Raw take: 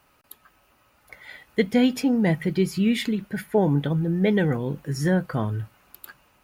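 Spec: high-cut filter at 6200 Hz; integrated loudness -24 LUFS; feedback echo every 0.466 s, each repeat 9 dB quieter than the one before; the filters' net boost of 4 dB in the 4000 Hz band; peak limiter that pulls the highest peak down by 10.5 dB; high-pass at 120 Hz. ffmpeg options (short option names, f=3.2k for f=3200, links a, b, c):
-af "highpass=120,lowpass=6.2k,equalizer=f=4k:t=o:g=6,alimiter=limit=-17dB:level=0:latency=1,aecho=1:1:466|932|1398|1864:0.355|0.124|0.0435|0.0152,volume=2.5dB"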